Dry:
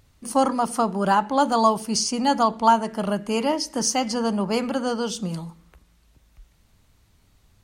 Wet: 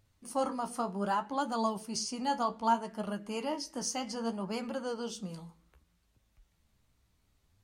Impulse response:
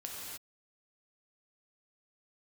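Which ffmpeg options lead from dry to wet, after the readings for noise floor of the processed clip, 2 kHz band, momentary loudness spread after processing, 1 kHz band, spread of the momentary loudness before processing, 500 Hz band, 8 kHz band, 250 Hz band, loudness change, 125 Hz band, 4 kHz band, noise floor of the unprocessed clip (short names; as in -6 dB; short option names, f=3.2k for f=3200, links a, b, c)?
-73 dBFS, -11.5 dB, 7 LU, -12.0 dB, 7 LU, -12.0 dB, -12.0 dB, -12.0 dB, -12.0 dB, -12.5 dB, -12.0 dB, -61 dBFS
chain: -af "flanger=delay=9.1:depth=7.5:regen=44:speed=0.64:shape=sinusoidal,volume=-8dB"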